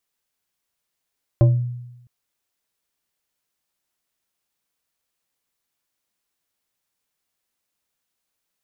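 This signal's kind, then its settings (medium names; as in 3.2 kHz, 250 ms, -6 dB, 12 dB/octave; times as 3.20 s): FM tone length 0.66 s, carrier 122 Hz, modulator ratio 3.75, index 0.63, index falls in 0.38 s exponential, decay 0.96 s, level -8 dB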